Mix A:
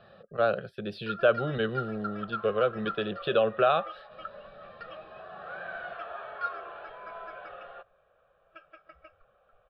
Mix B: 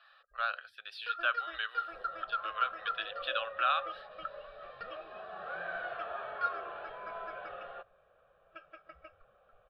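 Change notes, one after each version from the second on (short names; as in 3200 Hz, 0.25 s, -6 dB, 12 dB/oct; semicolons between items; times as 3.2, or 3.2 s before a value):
speech: add HPF 1100 Hz 24 dB/oct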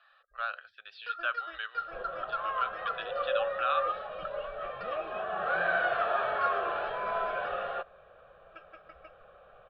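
speech: add air absorption 170 m; second sound +11.0 dB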